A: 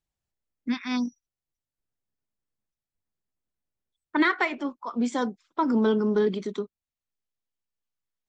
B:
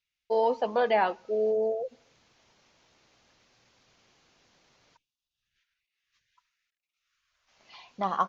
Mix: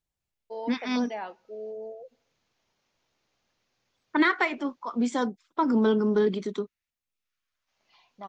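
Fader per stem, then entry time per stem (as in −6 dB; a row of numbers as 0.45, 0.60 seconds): 0.0, −11.5 decibels; 0.00, 0.20 seconds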